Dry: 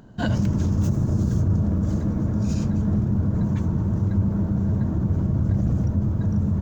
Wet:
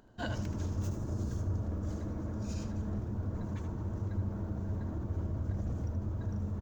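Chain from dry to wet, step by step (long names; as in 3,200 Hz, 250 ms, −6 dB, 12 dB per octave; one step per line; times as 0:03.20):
parametric band 160 Hz −13 dB 1 octave
on a send: single-tap delay 77 ms −10 dB
on the sum: level −9 dB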